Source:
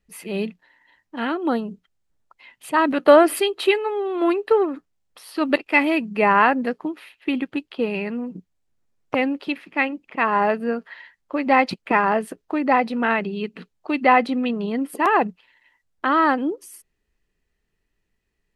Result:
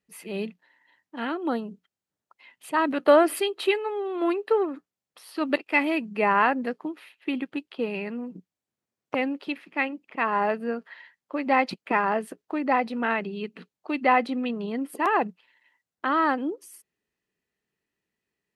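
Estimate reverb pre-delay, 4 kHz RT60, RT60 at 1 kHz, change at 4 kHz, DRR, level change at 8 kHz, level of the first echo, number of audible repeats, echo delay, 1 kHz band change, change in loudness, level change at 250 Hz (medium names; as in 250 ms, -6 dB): no reverb, no reverb, no reverb, -5.0 dB, no reverb, -5.0 dB, no echo, no echo, no echo, -5.0 dB, -5.0 dB, -5.5 dB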